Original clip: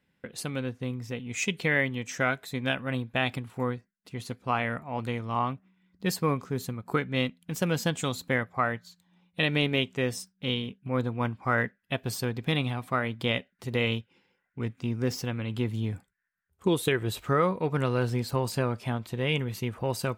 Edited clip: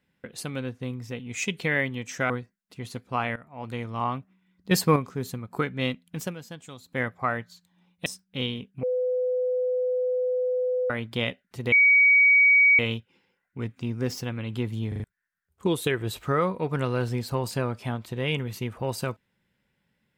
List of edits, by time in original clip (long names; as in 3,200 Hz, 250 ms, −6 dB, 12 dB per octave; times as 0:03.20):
0:02.30–0:03.65: remove
0:04.71–0:05.20: fade in, from −17.5 dB
0:06.06–0:06.31: clip gain +6.5 dB
0:07.56–0:08.37: duck −13.5 dB, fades 0.14 s
0:09.41–0:10.14: remove
0:10.91–0:12.98: beep over 503 Hz −22.5 dBFS
0:13.80: insert tone 2,260 Hz −14 dBFS 1.07 s
0:15.89: stutter in place 0.04 s, 4 plays